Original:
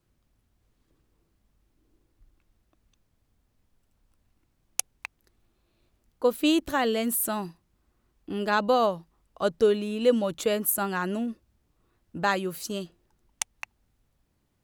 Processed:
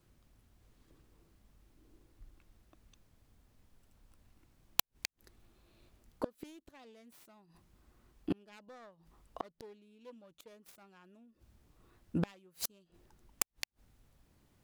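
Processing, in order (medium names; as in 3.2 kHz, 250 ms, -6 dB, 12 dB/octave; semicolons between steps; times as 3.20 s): self-modulated delay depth 0.47 ms; inverted gate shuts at -25 dBFS, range -35 dB; trim +4 dB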